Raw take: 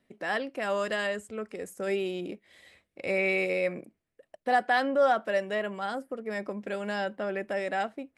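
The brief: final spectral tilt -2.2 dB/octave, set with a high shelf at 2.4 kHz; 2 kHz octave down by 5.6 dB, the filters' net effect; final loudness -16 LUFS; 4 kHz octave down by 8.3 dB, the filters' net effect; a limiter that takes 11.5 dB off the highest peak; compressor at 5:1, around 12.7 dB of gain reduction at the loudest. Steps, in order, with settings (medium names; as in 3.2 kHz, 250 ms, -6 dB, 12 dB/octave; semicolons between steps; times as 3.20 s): peaking EQ 2 kHz -3.5 dB; treble shelf 2.4 kHz -4.5 dB; peaking EQ 4 kHz -6 dB; compression 5:1, threshold -35 dBFS; trim +29 dB; peak limiter -7.5 dBFS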